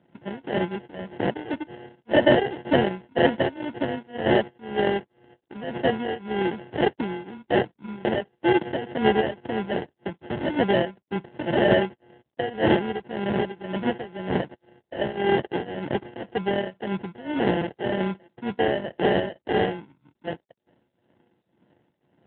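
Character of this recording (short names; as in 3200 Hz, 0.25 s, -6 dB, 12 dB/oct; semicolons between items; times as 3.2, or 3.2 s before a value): a buzz of ramps at a fixed pitch in blocks of 16 samples; tremolo triangle 1.9 Hz, depth 90%; aliases and images of a low sample rate 1200 Hz, jitter 0%; AMR-NB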